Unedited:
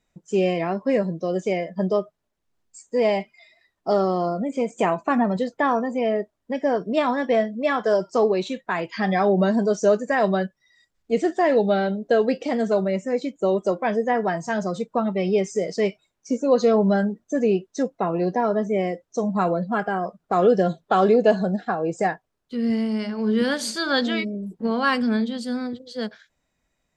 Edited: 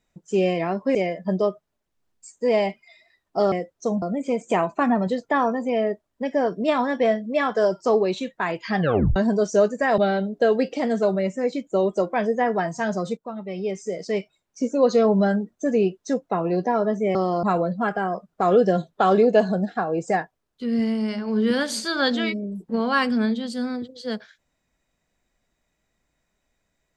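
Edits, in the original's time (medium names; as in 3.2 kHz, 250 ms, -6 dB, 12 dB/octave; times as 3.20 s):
0.95–1.46 s: delete
4.03–4.31 s: swap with 18.84–19.34 s
9.08 s: tape stop 0.37 s
10.27–11.67 s: delete
14.86–16.41 s: fade in, from -13 dB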